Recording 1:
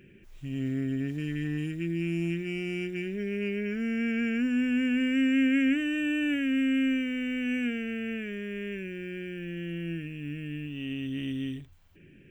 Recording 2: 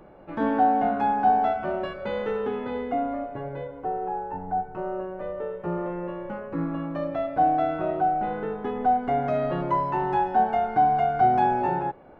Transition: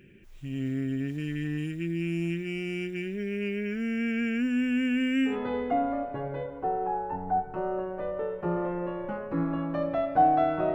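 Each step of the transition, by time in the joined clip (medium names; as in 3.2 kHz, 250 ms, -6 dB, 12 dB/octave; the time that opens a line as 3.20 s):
recording 1
5.31 s: go over to recording 2 from 2.52 s, crossfade 0.14 s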